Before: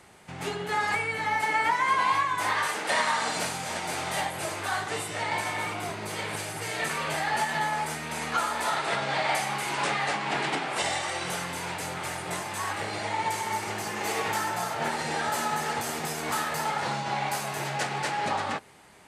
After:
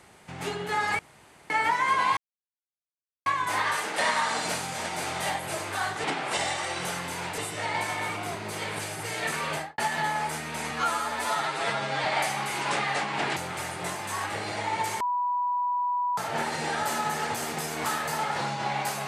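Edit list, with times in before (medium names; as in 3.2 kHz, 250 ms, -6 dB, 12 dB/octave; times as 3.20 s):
0.99–1.50 s: room tone
2.17 s: insert silence 1.09 s
7.09–7.35 s: studio fade out
8.28–9.17 s: stretch 1.5×
10.49–11.83 s: move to 4.95 s
13.47–14.64 s: bleep 981 Hz -24 dBFS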